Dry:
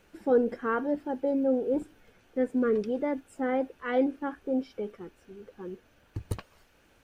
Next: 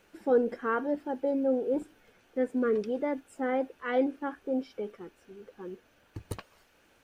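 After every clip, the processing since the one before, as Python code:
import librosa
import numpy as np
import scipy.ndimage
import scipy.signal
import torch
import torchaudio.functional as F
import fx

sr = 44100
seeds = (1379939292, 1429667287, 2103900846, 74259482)

y = fx.low_shelf(x, sr, hz=160.0, db=-8.5)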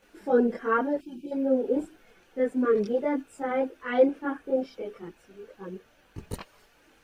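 y = fx.chorus_voices(x, sr, voices=4, hz=0.3, base_ms=23, depth_ms=3.7, mix_pct=65)
y = fx.spec_box(y, sr, start_s=1.01, length_s=0.31, low_hz=380.0, high_hz=2300.0, gain_db=-25)
y = y * 10.0 ** (6.0 / 20.0)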